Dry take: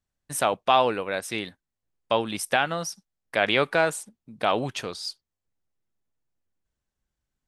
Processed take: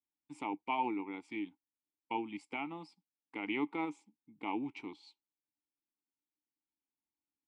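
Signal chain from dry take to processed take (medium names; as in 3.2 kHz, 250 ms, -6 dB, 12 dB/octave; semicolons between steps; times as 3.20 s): formant shift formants -2 st; vowel filter u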